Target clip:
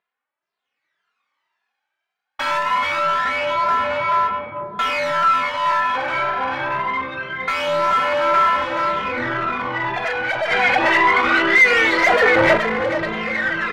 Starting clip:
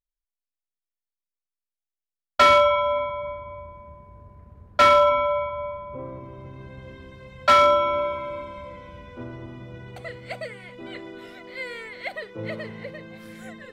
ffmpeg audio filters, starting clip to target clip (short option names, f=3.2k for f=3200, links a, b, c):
-filter_complex "[0:a]highpass=170,aecho=1:1:430|860|1290|1720:0.447|0.17|0.0645|0.0245,dynaudnorm=f=120:g=11:m=14dB,lowpass=6.5k,bass=f=250:g=5,treble=f=4k:g=-7,aeval=exprs='(tanh(22.4*val(0)+0.25)-tanh(0.25))/22.4':c=same,aphaser=in_gain=1:out_gain=1:delay=1.3:decay=0.57:speed=0.24:type=sinusoidal,tremolo=f=260:d=0.462,asplit=2[a][b];[b]highpass=f=720:p=1,volume=20dB,asoftclip=type=tanh:threshold=-17.5dB[c];[a][c]amix=inputs=2:normalize=0,lowpass=f=2k:p=1,volume=-6dB,asplit=3[d][e][f];[d]afade=t=out:st=10.5:d=0.02[g];[e]acontrast=66,afade=t=in:st=10.5:d=0.02,afade=t=out:st=12.56:d=0.02[h];[f]afade=t=in:st=12.56:d=0.02[i];[g][h][i]amix=inputs=3:normalize=0,equalizer=f=1.5k:t=o:w=2.8:g=12,asplit=2[j][k];[k]adelay=2.5,afreqshift=1.9[l];[j][l]amix=inputs=2:normalize=1,volume=-1dB"